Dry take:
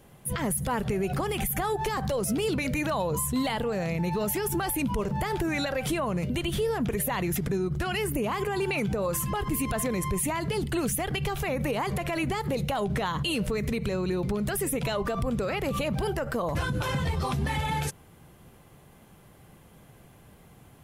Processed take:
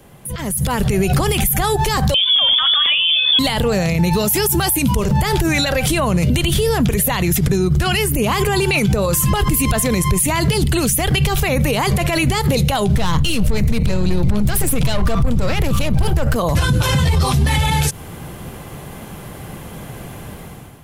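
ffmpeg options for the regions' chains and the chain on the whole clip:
-filter_complex "[0:a]asettb=1/sr,asplit=3[a][b][c];[a]atrim=end=2.144[d];[b]atrim=start=2.14:end=3.39,asetpts=PTS-STARTPTS,afade=t=in:d=0.004:c=qsin,afade=t=out:st=1.246:d=0.004:c=qsin,bandreject=f=220.6:t=h:w=4,bandreject=f=441.2:t=h:w=4,bandreject=f=661.8:t=h:w=4,bandreject=f=882.4:t=h:w=4,bandreject=f=1.103k:t=h:w=4,bandreject=f=1.3236k:t=h:w=4,bandreject=f=1.5442k:t=h:w=4,bandreject=f=1.7648k:t=h:w=4,bandreject=f=1.9854k:t=h:w=4,bandreject=f=2.206k:t=h:w=4,bandreject=f=2.4266k:t=h:w=4,bandreject=f=2.6472k:t=h:w=4,bandreject=f=2.8678k:t=h:w=4,bandreject=f=3.0884k:t=h:w=4,bandreject=f=3.309k:t=h:w=4,bandreject=f=3.5296k:t=h:w=4,bandreject=f=3.7502k:t=h:w=4,bandreject=f=3.9708k:t=h:w=4,bandreject=f=4.1914k:t=h:w=4,bandreject=f=4.412k:t=h:w=4,bandreject=f=4.6326k:t=h:w=4,bandreject=f=4.8532k:t=h:w=4,bandreject=f=5.0738k:t=h:w=4,bandreject=f=5.2944k:t=h:w=4,bandreject=f=5.515k:t=h:w=4,bandreject=f=5.7356k:t=h:w=4,bandreject=f=5.9562k:t=h:w=4,bandreject=f=6.1768k:t=h:w=4,bandreject=f=6.3974k:t=h:w=4,bandreject=f=6.618k:t=h:w=4,bandreject=f=6.8386k:t=h:w=4,bandreject=f=7.0592k:t=h:w=4,bandreject=f=7.2798k:t=h:w=4,lowpass=f=3.1k:t=q:w=0.5098,lowpass=f=3.1k:t=q:w=0.6013,lowpass=f=3.1k:t=q:w=0.9,lowpass=f=3.1k:t=q:w=2.563,afreqshift=-3600[e];[c]atrim=start=3.386[f];[d][e]acrossfade=d=0.004:c1=hsin:c2=qsin[g];[g][f]acrossfade=d=0.004:c1=qsin:c2=hsin,asettb=1/sr,asplit=3[h][i][j];[h]atrim=end=4.134[k];[i]atrim=start=4.13:end=5,asetpts=PTS-STARTPTS,afade=t=in:d=0.004:c=qsin,afade=t=out:st=0.866:d=0.004:c=qsin,highpass=f=49:w=0.5412,highpass=f=49:w=1.3066,highshelf=f=8k:g=7[l];[j]atrim=start=4.996[m];[k][l]acrossfade=d=0.004:c1=hsin:c2=qsin[n];[n][m]acrossfade=d=0.004:c1=qsin:c2=hsin,asettb=1/sr,asplit=3[o][p][q];[o]atrim=end=12.954[r];[p]atrim=start=12.95:end=16.36,asetpts=PTS-STARTPTS,afade=t=in:d=0.004:c=qsin,afade=t=out:st=3.406:d=0.004:c=qsin,aeval=exprs='(tanh(22.4*val(0)+0.5)-tanh(0.5))/22.4':c=same,lowshelf=f=150:g=10.5,bandreject=f=400:w=8.4[s];[q]atrim=start=16.356[t];[r][s]acrossfade=d=0.004:c1=hsin:c2=qsin[u];[u][t]acrossfade=d=0.004:c1=qsin:c2=hsin,acrossover=split=130|3000[v][w][x];[w]acompressor=threshold=-41dB:ratio=2.5[y];[v][y][x]amix=inputs=3:normalize=0,alimiter=level_in=4.5dB:limit=-24dB:level=0:latency=1:release=50,volume=-4.5dB,dynaudnorm=f=220:g=5:m=12dB,volume=9dB"

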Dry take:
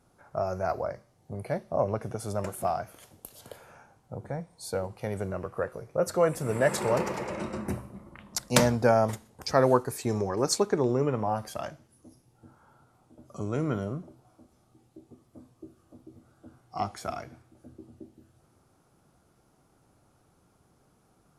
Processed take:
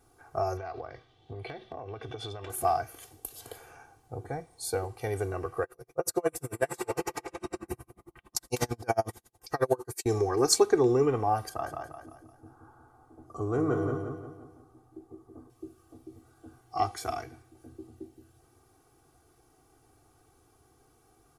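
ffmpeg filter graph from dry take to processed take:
-filter_complex "[0:a]asettb=1/sr,asplit=3[a][b][c];[a]atrim=end=0.574[d];[b]atrim=start=0.57:end=2.5,asetpts=PTS-STARTPTS,afade=t=in:d=0.004:c=qsin,afade=t=out:st=1.926:d=0.004:c=qsin,lowpass=f=3.4k:t=q:w=8,acompressor=threshold=-35dB:ratio=10:attack=3.2:release=140:knee=1:detection=peak[e];[c]atrim=start=2.496[f];[d][e]acrossfade=d=0.004:c1=hsin:c2=qsin[g];[g][f]acrossfade=d=0.004:c1=qsin:c2=hsin,asettb=1/sr,asplit=3[h][i][j];[h]atrim=end=5.634[k];[i]atrim=start=5.63:end=10.06,asetpts=PTS-STARTPTS,afade=t=in:d=0.004:c=qsin,afade=t=out:st=4.426:d=0.004:c=qsin,highshelf=f=8k:g=5.5,aecho=1:1:5.8:0.38,atrim=end_sample=195363,aeval=exprs='val(0)*pow(10,-37*(0.5-0.5*cos(2*PI*11*n/s))/20)':c=same[l];[j]atrim=start=10.056[m];[k][l]acrossfade=d=0.004:c1=hsin:c2=qsin[n];[n][m]acrossfade=d=0.004:c1=qsin:c2=hsin,asettb=1/sr,asplit=3[o][p][q];[o]atrim=end=11.494[r];[p]atrim=start=11.49:end=15.5,asetpts=PTS-STARTPTS,afade=t=in:d=0.004:c=qsin,afade=t=out:st=4.006:d=0.004:c=qsin,highshelf=f=1.8k:t=q:w=1.5:g=-10,aecho=1:1:174|348|522|696|870:0.596|0.25|0.105|0.0441|0.0185,atrim=end_sample=176841[s];[q]atrim=start=15.496[t];[r][s]acrossfade=d=0.004:c1=hsin:c2=qsin[u];[u][t]acrossfade=d=0.004:c1=qsin:c2=hsin,highshelf=f=9.2k:g=7,aecho=1:1:2.6:0.87,volume=-1dB"

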